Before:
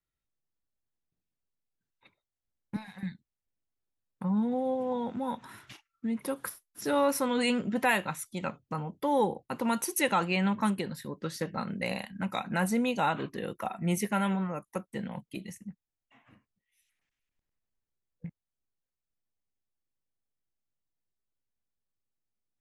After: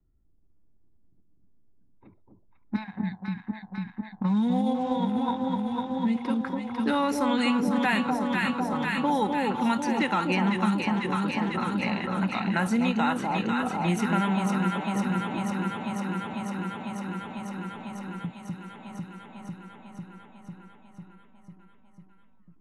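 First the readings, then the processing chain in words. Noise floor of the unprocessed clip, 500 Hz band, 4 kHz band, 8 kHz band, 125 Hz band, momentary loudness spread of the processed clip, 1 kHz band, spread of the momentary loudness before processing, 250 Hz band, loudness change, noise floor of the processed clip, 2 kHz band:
below −85 dBFS, +0.5 dB, +4.0 dB, −4.5 dB, +6.0 dB, 16 LU, +5.0 dB, 14 LU, +7.0 dB, +4.0 dB, −58 dBFS, +4.5 dB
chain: low-pass filter 7,700 Hz 12 dB per octave
low-pass that shuts in the quiet parts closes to 350 Hz, open at −25.5 dBFS
parametric band 520 Hz −9 dB 0.64 octaves
harmonic and percussive parts rebalanced percussive −4 dB
parametric band 150 Hz −12 dB 0.24 octaves
in parallel at +1 dB: output level in coarse steps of 17 dB
on the sum: delay that swaps between a low-pass and a high-pass 249 ms, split 940 Hz, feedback 81%, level −3 dB
multiband upward and downward compressor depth 70%
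level +1.5 dB

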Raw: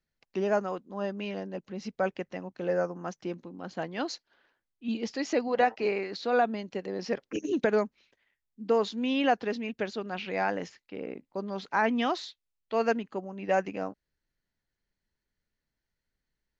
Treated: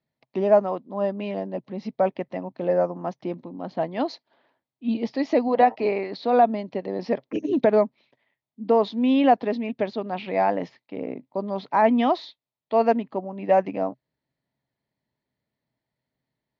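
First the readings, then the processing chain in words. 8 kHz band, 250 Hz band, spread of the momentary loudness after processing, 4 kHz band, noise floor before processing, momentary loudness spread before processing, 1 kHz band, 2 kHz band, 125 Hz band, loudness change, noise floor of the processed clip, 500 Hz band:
can't be measured, +7.5 dB, 13 LU, −0.5 dB, below −85 dBFS, 12 LU, +8.0 dB, −1.5 dB, +5.5 dB, +7.0 dB, below −85 dBFS, +7.0 dB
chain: loudspeaker in its box 110–4,200 Hz, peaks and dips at 130 Hz +10 dB, 260 Hz +6 dB, 640 Hz +8 dB, 930 Hz +5 dB, 1,500 Hz −9 dB, 2,800 Hz −5 dB
level +3.5 dB

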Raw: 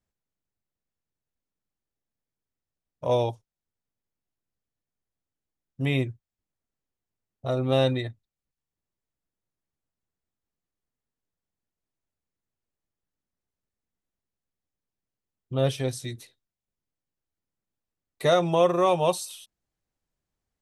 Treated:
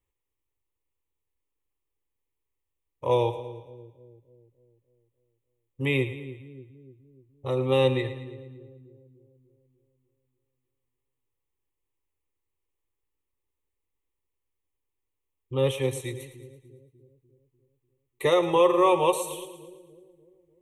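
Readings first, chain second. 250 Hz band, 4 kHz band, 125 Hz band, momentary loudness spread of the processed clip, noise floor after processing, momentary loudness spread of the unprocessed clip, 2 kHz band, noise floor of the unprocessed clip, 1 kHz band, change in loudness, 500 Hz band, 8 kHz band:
0.0 dB, −1.0 dB, −2.0 dB, 21 LU, −83 dBFS, 16 LU, +2.5 dB, below −85 dBFS, +1.0 dB, 0.0 dB, +1.0 dB, 0.0 dB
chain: phaser with its sweep stopped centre 1,000 Hz, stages 8
echo with a time of its own for lows and highs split 410 Hz, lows 297 ms, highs 112 ms, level −12.5 dB
level +4 dB

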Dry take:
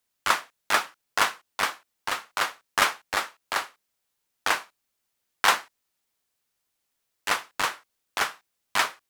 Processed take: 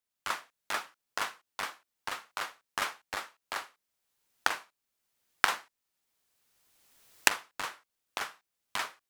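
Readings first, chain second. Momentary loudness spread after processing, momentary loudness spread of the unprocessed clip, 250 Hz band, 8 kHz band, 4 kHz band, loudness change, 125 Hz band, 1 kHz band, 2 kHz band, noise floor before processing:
12 LU, 8 LU, −7.5 dB, −5.5 dB, −8.0 dB, −7.5 dB, −8.0 dB, −9.0 dB, −7.0 dB, −79 dBFS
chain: camcorder AGC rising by 18 dB per second
level −11.5 dB

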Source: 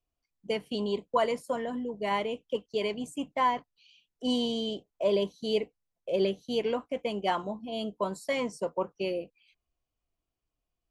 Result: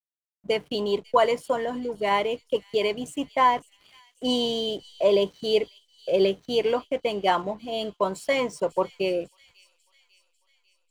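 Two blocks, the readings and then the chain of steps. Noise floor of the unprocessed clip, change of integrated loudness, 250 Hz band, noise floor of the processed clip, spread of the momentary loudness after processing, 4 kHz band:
below −85 dBFS, +6.0 dB, +2.0 dB, −72 dBFS, 9 LU, +6.5 dB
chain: dynamic equaliser 220 Hz, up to −8 dB, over −49 dBFS, Q 3.6
slack as between gear wheels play −52 dBFS
delay with a high-pass on its return 546 ms, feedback 55%, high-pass 3,700 Hz, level −16 dB
level +6.5 dB

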